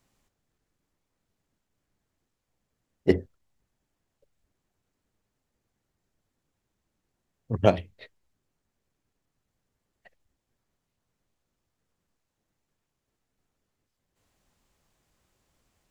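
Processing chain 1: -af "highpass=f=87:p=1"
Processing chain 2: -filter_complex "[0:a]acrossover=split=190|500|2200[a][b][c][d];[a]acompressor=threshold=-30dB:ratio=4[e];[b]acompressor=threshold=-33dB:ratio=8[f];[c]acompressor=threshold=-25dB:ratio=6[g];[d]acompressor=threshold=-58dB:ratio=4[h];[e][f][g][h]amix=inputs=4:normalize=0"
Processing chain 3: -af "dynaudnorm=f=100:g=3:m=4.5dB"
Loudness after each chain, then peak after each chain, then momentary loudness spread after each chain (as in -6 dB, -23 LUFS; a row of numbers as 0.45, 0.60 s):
-27.0, -33.0, -24.5 LUFS; -3.5, -12.5, -2.0 dBFS; 11, 11, 10 LU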